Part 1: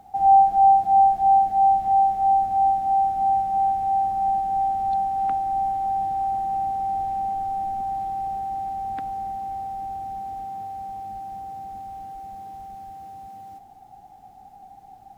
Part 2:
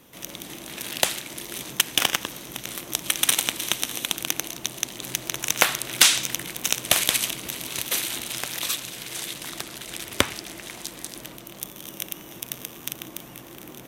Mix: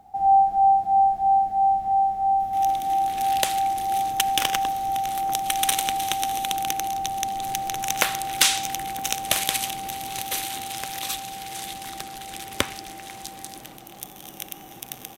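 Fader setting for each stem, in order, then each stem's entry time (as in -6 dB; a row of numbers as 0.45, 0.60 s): -2.5, -3.0 dB; 0.00, 2.40 s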